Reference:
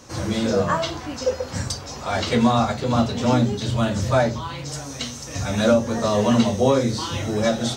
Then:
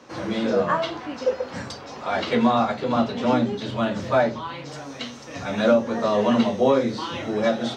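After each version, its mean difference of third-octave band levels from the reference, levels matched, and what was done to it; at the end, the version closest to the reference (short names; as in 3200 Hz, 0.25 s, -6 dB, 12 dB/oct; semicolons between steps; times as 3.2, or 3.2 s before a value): 4.5 dB: three-band isolator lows -18 dB, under 170 Hz, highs -18 dB, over 4000 Hz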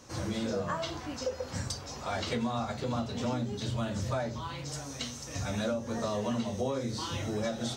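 3.0 dB: compressor 4:1, threshold -22 dBFS, peak gain reduction 9 dB; gain -7.5 dB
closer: second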